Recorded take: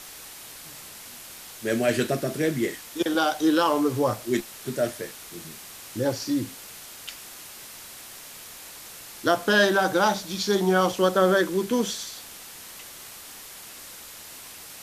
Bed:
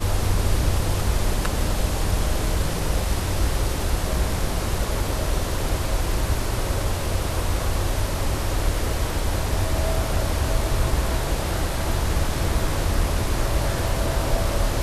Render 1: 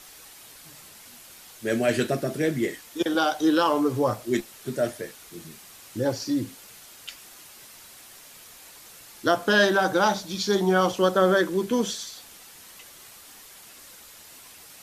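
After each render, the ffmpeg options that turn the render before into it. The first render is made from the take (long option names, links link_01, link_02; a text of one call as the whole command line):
ffmpeg -i in.wav -af "afftdn=noise_reduction=6:noise_floor=-43" out.wav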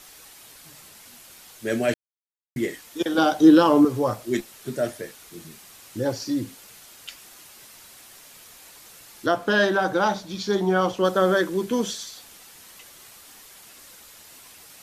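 ffmpeg -i in.wav -filter_complex "[0:a]asettb=1/sr,asplit=3[link_01][link_02][link_03];[link_01]atrim=end=3.184[link_04];[link_02]atrim=start=3.18:end=3.85,asetpts=PTS-STARTPTS,afade=type=in:duration=0.004:curve=qsin,afade=type=out:start_time=0.666:duration=0.004:curve=qsin,equalizer=frequency=190:width_type=o:width=2.6:gain=11.5[link_05];[link_03]atrim=start=3.846[link_06];[link_04][link_05]acrossfade=duration=0.004:curve1=hsin:curve2=qsin[link_07];[link_07][link_06]acrossfade=duration=0.004:curve1=qsin:curve2=hsin,asettb=1/sr,asplit=3[link_08][link_09][link_10];[link_08]atrim=end=9.264[link_11];[link_09]atrim=start=9.26:end=11.05,asetpts=PTS-STARTPTS,afade=type=in:duration=0.004:curve=qsin,afade=type=out:start_time=1.786:duration=0.004:curve=qsin,highshelf=frequency=4500:gain=-8.5[link_12];[link_10]atrim=start=11.046[link_13];[link_11][link_12]acrossfade=duration=0.004:curve1=hsin:curve2=qsin[link_14];[link_14][link_13]acrossfade=duration=0.004:curve1=qsin:curve2=hsin,asplit=3[link_15][link_16][link_17];[link_15]atrim=end=1.94,asetpts=PTS-STARTPTS,afade=type=out:start_time=1.936:duration=0.004:curve=hsin[link_18];[link_16]atrim=start=1.94:end=2.56,asetpts=PTS-STARTPTS,volume=0[link_19];[link_17]atrim=start=2.56,asetpts=PTS-STARTPTS,afade=type=in:duration=0.004:curve=hsin[link_20];[link_18][link_19][link_20]concat=n=3:v=0:a=1" out.wav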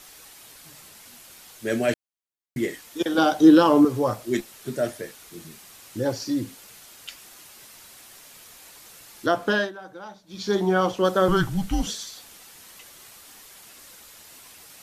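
ffmpeg -i in.wav -filter_complex "[0:a]asettb=1/sr,asplit=3[link_01][link_02][link_03];[link_01]atrim=end=11.284[link_04];[link_02]atrim=start=11.28:end=11.87,asetpts=PTS-STARTPTS,afade=type=in:duration=0.004:curve=qsin,afade=type=out:start_time=0.586:duration=0.004:curve=qsin,afreqshift=-200[link_05];[link_03]atrim=start=11.866[link_06];[link_04][link_05]acrossfade=duration=0.004:curve1=hsin:curve2=qsin[link_07];[link_07][link_06]acrossfade=duration=0.004:curve1=qsin:curve2=hsin,asplit=3[link_08][link_09][link_10];[link_08]atrim=end=9.72,asetpts=PTS-STARTPTS,afade=type=out:start_time=9.5:duration=0.22:silence=0.11885[link_11];[link_09]atrim=start=9.72:end=10.26,asetpts=PTS-STARTPTS,volume=-18.5dB[link_12];[link_10]atrim=start=10.26,asetpts=PTS-STARTPTS,afade=type=in:duration=0.22:silence=0.11885[link_13];[link_11][link_12][link_13]concat=n=3:v=0:a=1" out.wav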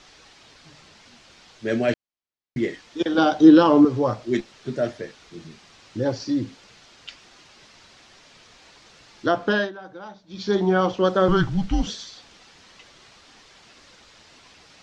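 ffmpeg -i in.wav -af "lowpass=frequency=5600:width=0.5412,lowpass=frequency=5600:width=1.3066,lowshelf=frequency=430:gain=3" out.wav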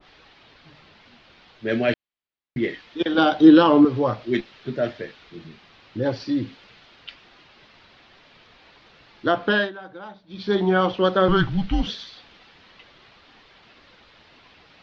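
ffmpeg -i in.wav -af "lowpass=frequency=4000:width=0.5412,lowpass=frequency=4000:width=1.3066,adynamicequalizer=threshold=0.0158:dfrequency=1500:dqfactor=0.7:tfrequency=1500:tqfactor=0.7:attack=5:release=100:ratio=0.375:range=2.5:mode=boostabove:tftype=highshelf" out.wav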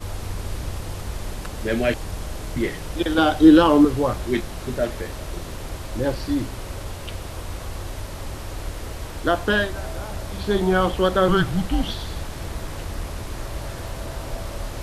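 ffmpeg -i in.wav -i bed.wav -filter_complex "[1:a]volume=-8.5dB[link_01];[0:a][link_01]amix=inputs=2:normalize=0" out.wav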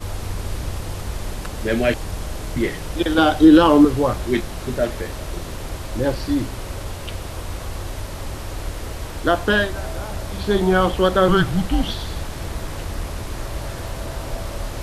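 ffmpeg -i in.wav -af "volume=2.5dB,alimiter=limit=-2dB:level=0:latency=1" out.wav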